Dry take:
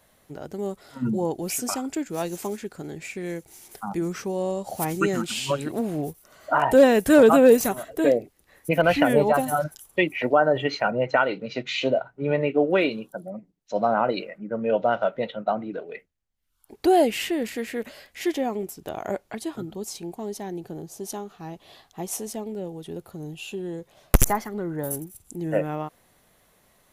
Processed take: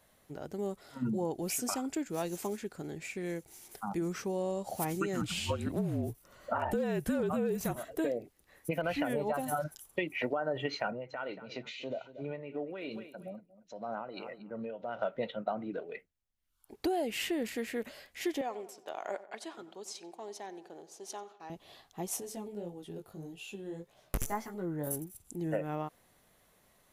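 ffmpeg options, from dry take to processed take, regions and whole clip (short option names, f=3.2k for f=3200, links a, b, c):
-filter_complex "[0:a]asettb=1/sr,asplit=3[a][b][c];[a]atrim=end=5.214[d];[b]atrim=start=5.21:end=7.76,asetpts=PTS-STARTPTS,afade=t=in:d=0.004:c=qsin,afade=t=out:st=2.546:d=0.004:c=qsin,afreqshift=-44,bass=f=250:g=5,treble=f=4k:g=-3[e];[c]atrim=start=7.756[f];[d][e]acrossfade=d=0.004:c1=hsin:c2=qsin[g];[g][f]acrossfade=d=0.004:c1=qsin:c2=hsin,asettb=1/sr,asplit=3[h][i][j];[h]atrim=end=10.934[k];[i]atrim=start=10.93:end=14.99,asetpts=PTS-STARTPTS,afade=t=in:d=0.004:c=qsin,afade=t=out:st=4.056:d=0.004:c=qsin,aecho=1:1:232|464:0.112|0.0191,atrim=end_sample=179046,acompressor=threshold=-32dB:ratio=2.5:attack=3.2:release=140:knee=1:detection=peak,tremolo=f=3:d=0.54[l];[j]atrim=start=14.986[m];[k][l]acrossfade=d=0.004:c1=hsin:c2=qsin[n];[n][m]acrossfade=d=0.004:c1=qsin:c2=hsin,asettb=1/sr,asplit=3[o][p][q];[o]atrim=end=18.414[r];[p]atrim=start=18.41:end=21.5,asetpts=PTS-STARTPTS,afade=t=in:d=0.004:c=qsin,afade=t=out:st=3.086:d=0.004:c=qsin,agate=range=-33dB:threshold=-45dB:ratio=3:release=100:detection=peak,highpass=550,lowpass=7.2k,asplit=2[s][t];[t]adelay=91,lowpass=f=2.7k:p=1,volume=-15.5dB,asplit=2[u][v];[v]adelay=91,lowpass=f=2.7k:p=1,volume=0.54,asplit=2[w][x];[x]adelay=91,lowpass=f=2.7k:p=1,volume=0.54,asplit=2[y][z];[z]adelay=91,lowpass=f=2.7k:p=1,volume=0.54,asplit=2[aa][ab];[ab]adelay=91,lowpass=f=2.7k:p=1,volume=0.54[ac];[s][u][w][y][aa][ac]amix=inputs=6:normalize=0,atrim=end_sample=136269[ad];[q]atrim=start=21.496[ae];[r][ad]acrossfade=d=0.004:c1=hsin:c2=qsin[af];[af][ae]acrossfade=d=0.004:c1=qsin:c2=hsin,asettb=1/sr,asplit=3[ag][ah][ai];[ag]atrim=end=22.204[aj];[ah]atrim=start=22.2:end=24.87,asetpts=PTS-STARTPTS,afade=t=in:d=0.004:c=qsin,afade=t=out:st=2.666:d=0.004:c=qsin,bandreject=f=439.7:t=h:w=4,bandreject=f=879.4:t=h:w=4,bandreject=f=1.3191k:t=h:w=4,bandreject=f=1.7588k:t=h:w=4,bandreject=f=2.1985k:t=h:w=4,bandreject=f=2.6382k:t=h:w=4,bandreject=f=3.0779k:t=h:w=4,bandreject=f=3.5176k:t=h:w=4,bandreject=f=3.9573k:t=h:w=4,bandreject=f=4.397k:t=h:w=4,bandreject=f=4.8367k:t=h:w=4,bandreject=f=5.2764k:t=h:w=4,bandreject=f=5.7161k:t=h:w=4,bandreject=f=6.1558k:t=h:w=4,bandreject=f=6.5955k:t=h:w=4,bandreject=f=7.0352k:t=h:w=4,bandreject=f=7.4749k:t=h:w=4,bandreject=f=7.9146k:t=h:w=4,bandreject=f=8.3543k:t=h:w=4,bandreject=f=8.794k:t=h:w=4,bandreject=f=9.2337k:t=h:w=4,bandreject=f=9.6734k:t=h:w=4,bandreject=f=10.1131k:t=h:w=4,bandreject=f=10.5528k:t=h:w=4,bandreject=f=10.9925k:t=h:w=4,bandreject=f=11.4322k:t=h:w=4,bandreject=f=11.8719k:t=h:w=4,bandreject=f=12.3116k:t=h:w=4,bandreject=f=12.7513k:t=h:w=4,bandreject=f=13.191k:t=h:w=4,bandreject=f=13.6307k:t=h:w=4,bandreject=f=14.0704k:t=h:w=4,bandreject=f=14.5101k:t=h:w=4,bandreject=f=14.9498k:t=h:w=4,bandreject=f=15.3895k:t=h:w=4,flanger=delay=16:depth=4.4:speed=1.7[ak];[ai]atrim=start=24.866[al];[aj][ak]acrossfade=d=0.004:c1=hsin:c2=qsin[am];[am][al]acrossfade=d=0.004:c1=qsin:c2=hsin,alimiter=limit=-12.5dB:level=0:latency=1:release=196,acompressor=threshold=-23dB:ratio=6,volume=-5.5dB"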